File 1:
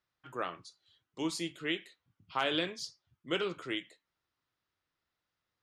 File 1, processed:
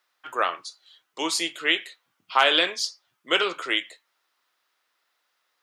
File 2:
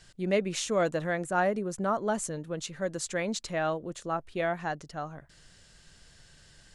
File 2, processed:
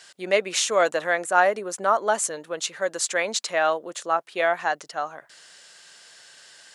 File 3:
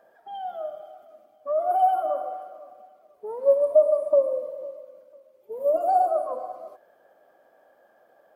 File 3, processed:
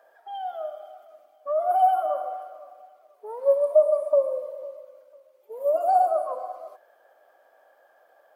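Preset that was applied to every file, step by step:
HPF 600 Hz 12 dB/oct; match loudness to -24 LUFS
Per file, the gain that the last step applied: +14.0, +10.0, +2.5 dB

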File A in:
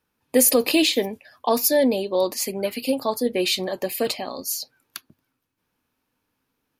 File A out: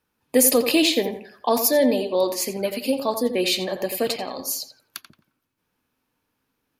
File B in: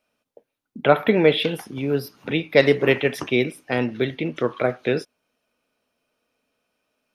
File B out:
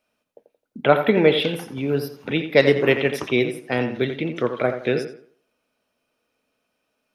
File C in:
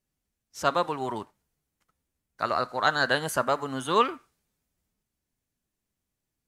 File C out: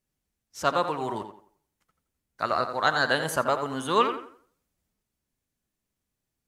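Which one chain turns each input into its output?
tape echo 86 ms, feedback 34%, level -8 dB, low-pass 2900 Hz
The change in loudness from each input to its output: +0.5, +0.5, +0.5 LU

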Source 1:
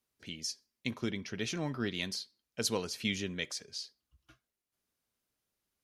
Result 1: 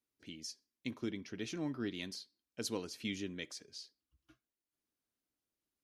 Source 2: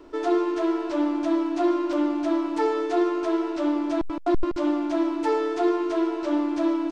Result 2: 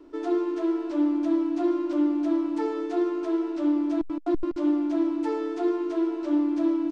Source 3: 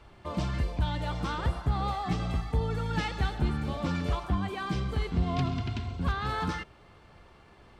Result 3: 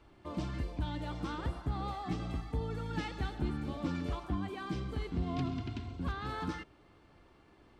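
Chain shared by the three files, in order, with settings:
bell 300 Hz +9.5 dB 0.55 oct; gain -8 dB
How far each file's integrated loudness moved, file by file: -6.0, -1.5, -6.5 LU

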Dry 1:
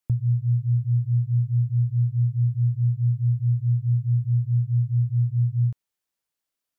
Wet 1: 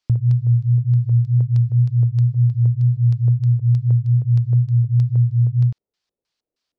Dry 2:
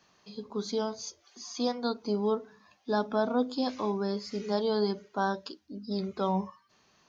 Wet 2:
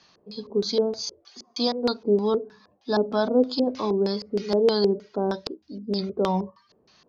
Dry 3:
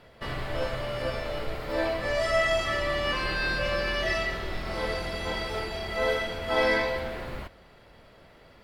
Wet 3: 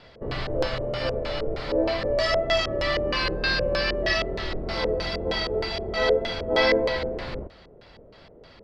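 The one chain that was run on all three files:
wow and flutter 23 cents; LFO low-pass square 3.2 Hz 460–4700 Hz; normalise peaks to -9 dBFS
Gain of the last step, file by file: +5.5, +4.0, +2.5 dB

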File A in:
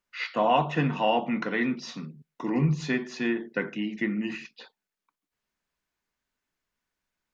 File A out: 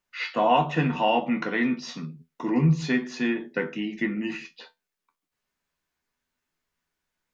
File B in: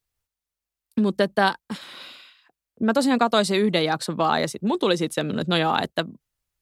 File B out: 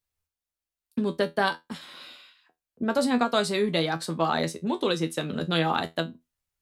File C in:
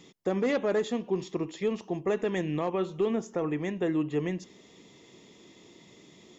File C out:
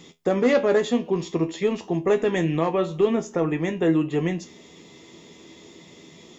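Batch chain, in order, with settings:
resonator 82 Hz, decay 0.18 s, harmonics all, mix 80%; normalise peaks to -9 dBFS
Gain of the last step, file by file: +7.0, +1.0, +12.5 dB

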